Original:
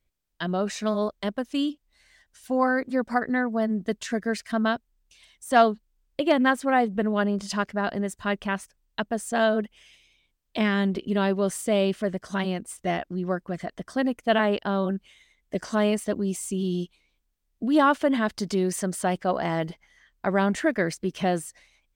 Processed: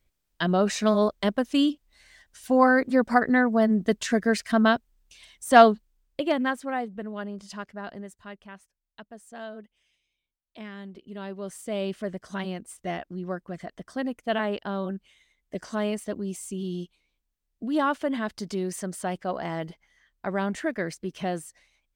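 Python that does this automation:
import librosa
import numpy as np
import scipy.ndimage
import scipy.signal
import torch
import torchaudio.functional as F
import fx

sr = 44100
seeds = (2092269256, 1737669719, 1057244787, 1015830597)

y = fx.gain(x, sr, db=fx.line((5.72, 4.0), (6.29, -3.5), (7.01, -10.5), (7.96, -10.5), (8.41, -17.0), (10.92, -17.0), (11.97, -5.0)))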